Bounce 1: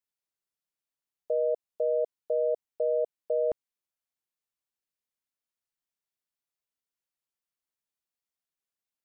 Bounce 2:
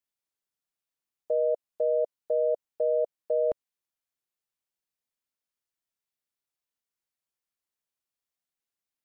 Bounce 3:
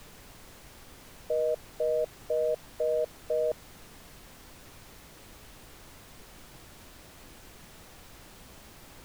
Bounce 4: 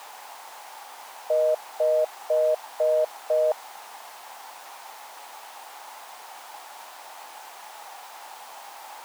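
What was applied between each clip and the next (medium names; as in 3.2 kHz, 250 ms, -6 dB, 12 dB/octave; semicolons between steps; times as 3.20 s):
dynamic bell 570 Hz, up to +3 dB, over -38 dBFS, Q 4.4
added noise pink -48 dBFS; trim -2.5 dB
resonant high-pass 830 Hz, resonance Q 4.9; trim +6.5 dB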